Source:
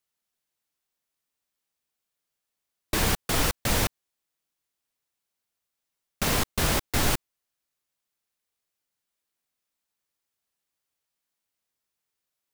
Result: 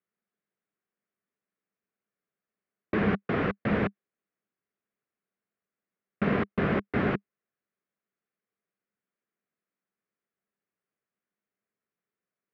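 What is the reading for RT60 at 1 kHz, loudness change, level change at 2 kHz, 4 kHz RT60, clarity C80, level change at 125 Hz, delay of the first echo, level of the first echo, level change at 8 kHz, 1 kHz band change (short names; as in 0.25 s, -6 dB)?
none, -3.0 dB, -2.5 dB, none, none, -1.5 dB, none, none, under -40 dB, -3.0 dB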